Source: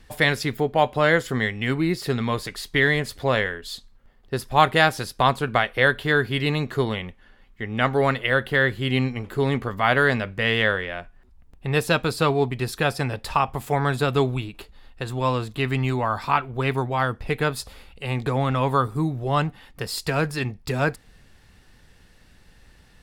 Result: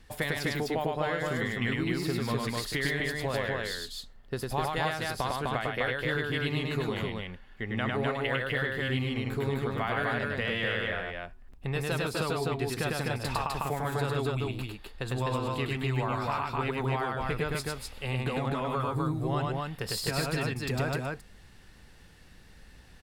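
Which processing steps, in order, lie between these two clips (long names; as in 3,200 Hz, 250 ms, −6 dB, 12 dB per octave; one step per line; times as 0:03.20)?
downward compressor 6 to 1, threshold −25 dBFS, peak gain reduction 14.5 dB
loudspeakers that aren't time-aligned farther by 35 metres −2 dB, 87 metres −2 dB
level −4 dB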